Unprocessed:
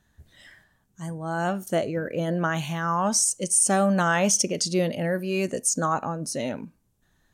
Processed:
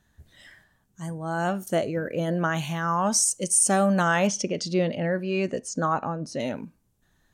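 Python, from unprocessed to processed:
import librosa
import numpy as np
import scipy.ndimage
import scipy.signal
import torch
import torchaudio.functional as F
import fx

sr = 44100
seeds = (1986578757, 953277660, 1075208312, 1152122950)

y = fx.lowpass(x, sr, hz=4100.0, slope=12, at=(4.27, 6.4))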